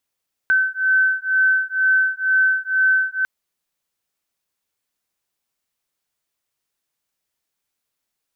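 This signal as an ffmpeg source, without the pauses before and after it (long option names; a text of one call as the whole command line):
ffmpeg -f lavfi -i "aevalsrc='0.126*(sin(2*PI*1530*t)+sin(2*PI*1532.1*t))':duration=2.75:sample_rate=44100" out.wav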